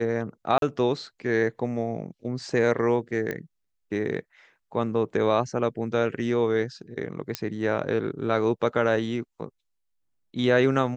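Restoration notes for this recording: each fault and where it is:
0.58–0.62 s: dropout 42 ms
3.31 s: pop -17 dBFS
7.35 s: pop -10 dBFS

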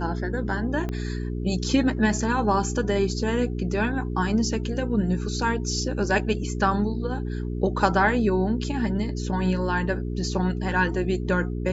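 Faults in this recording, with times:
hum 60 Hz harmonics 7 -29 dBFS
0.89 s: pop -18 dBFS

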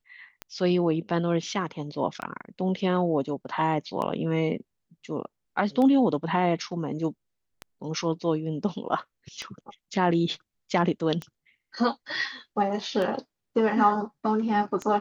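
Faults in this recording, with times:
tick 33 1/3 rpm -18 dBFS

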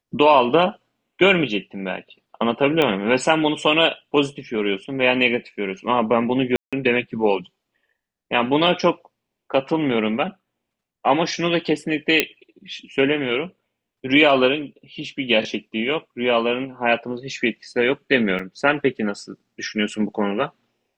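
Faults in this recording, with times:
2.82 s: pop -8 dBFS
6.56–6.73 s: dropout 166 ms
12.20 s: pop -1 dBFS
18.39 s: dropout 3.8 ms

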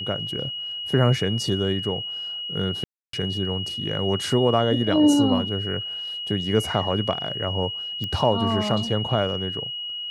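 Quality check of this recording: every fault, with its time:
whine 2.9 kHz -29 dBFS
2.84–3.13 s: dropout 293 ms
8.04 s: pop -16 dBFS

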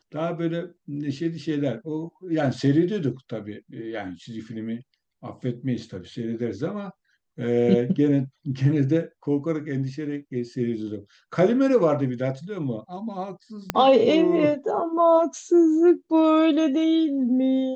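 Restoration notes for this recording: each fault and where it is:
13.70 s: pop -8 dBFS

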